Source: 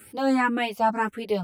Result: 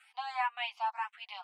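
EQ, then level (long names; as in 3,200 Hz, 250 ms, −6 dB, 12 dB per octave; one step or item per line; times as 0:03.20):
Chebyshev high-pass with heavy ripple 730 Hz, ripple 6 dB
dynamic equaliser 1,400 Hz, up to −6 dB, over −40 dBFS, Q 1.3
low-pass filter 4,100 Hz 12 dB per octave
−2.0 dB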